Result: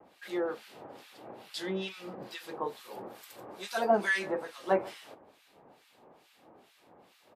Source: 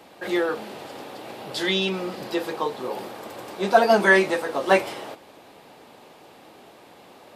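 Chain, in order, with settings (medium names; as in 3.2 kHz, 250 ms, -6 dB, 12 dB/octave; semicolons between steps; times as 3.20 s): 2.56–3.95 s: treble shelf 8.2 kHz -> 4.7 kHz +7.5 dB; on a send: delay 145 ms -21 dB; on the sum: harmonic tremolo 2.3 Hz, depth 100%, crossover 1.5 kHz; vibrato 0.32 Hz 9.3 cents; trim -7 dB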